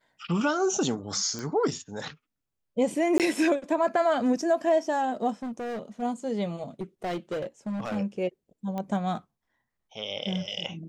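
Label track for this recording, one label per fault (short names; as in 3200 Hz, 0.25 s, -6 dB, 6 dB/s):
1.390000	1.390000	pop -21 dBFS
3.180000	3.200000	gap 18 ms
5.420000	6.030000	clipped -31 dBFS
6.810000	7.970000	clipped -27.5 dBFS
8.780000	8.780000	pop -21 dBFS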